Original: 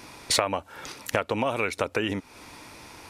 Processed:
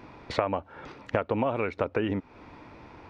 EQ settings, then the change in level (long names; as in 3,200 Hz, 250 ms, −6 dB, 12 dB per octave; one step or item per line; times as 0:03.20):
head-to-tape spacing loss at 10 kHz 41 dB
+2.0 dB